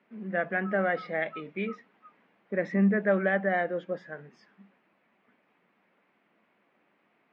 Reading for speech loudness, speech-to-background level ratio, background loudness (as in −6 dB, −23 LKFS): −29.0 LKFS, 19.5 dB, −48.5 LKFS